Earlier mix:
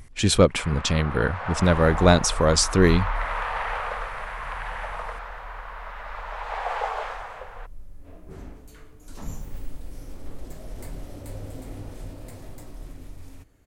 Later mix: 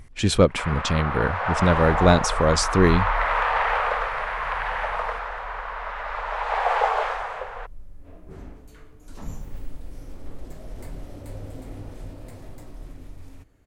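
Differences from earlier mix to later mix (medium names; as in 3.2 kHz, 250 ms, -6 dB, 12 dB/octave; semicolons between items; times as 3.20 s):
first sound +7.0 dB; master: add treble shelf 4.7 kHz -6 dB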